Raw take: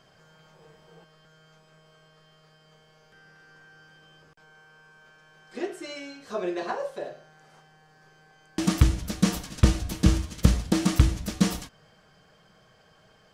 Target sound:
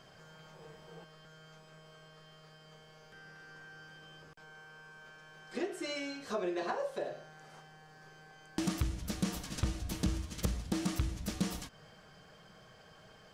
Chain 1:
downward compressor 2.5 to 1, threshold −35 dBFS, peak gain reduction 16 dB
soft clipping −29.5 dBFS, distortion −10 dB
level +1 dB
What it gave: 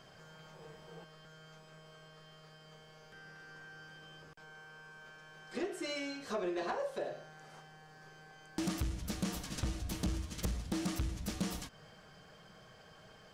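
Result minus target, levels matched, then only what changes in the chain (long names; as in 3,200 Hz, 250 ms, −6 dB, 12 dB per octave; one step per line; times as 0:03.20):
soft clipping: distortion +7 dB
change: soft clipping −22.5 dBFS, distortion −17 dB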